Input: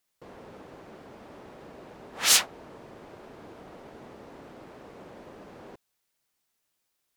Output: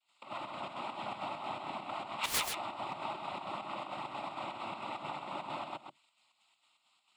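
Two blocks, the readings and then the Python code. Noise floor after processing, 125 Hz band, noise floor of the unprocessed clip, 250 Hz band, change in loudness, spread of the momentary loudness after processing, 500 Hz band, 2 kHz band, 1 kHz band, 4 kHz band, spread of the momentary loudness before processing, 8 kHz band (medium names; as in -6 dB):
-77 dBFS, -1.5 dB, -79 dBFS, -1.0 dB, -17.5 dB, 9 LU, 0.0 dB, -6.0 dB, +6.0 dB, -11.0 dB, 14 LU, -15.5 dB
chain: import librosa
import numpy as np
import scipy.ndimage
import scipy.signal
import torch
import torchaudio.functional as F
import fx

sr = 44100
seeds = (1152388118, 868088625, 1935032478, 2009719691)

p1 = fx.octave_divider(x, sr, octaves=1, level_db=2.0)
p2 = scipy.signal.sosfilt(scipy.signal.butter(2, 490.0, 'highpass', fs=sr, output='sos'), p1)
p3 = fx.over_compress(p2, sr, threshold_db=-51.0, ratio=-0.5)
p4 = p2 + (p3 * 10.0 ** (2.0 / 20.0))
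p5 = fx.noise_vocoder(p4, sr, seeds[0], bands=12)
p6 = fx.fixed_phaser(p5, sr, hz=1700.0, stages=6)
p7 = 10.0 ** (-29.0 / 20.0) * (np.abs((p6 / 10.0 ** (-29.0 / 20.0) + 3.0) % 4.0 - 2.0) - 1.0)
p8 = fx.volume_shaper(p7, sr, bpm=133, per_beat=2, depth_db=-13, release_ms=83.0, shape='slow start')
p9 = p8 + fx.echo_single(p8, sr, ms=132, db=-6.5, dry=0)
y = p9 * 10.0 ** (3.5 / 20.0)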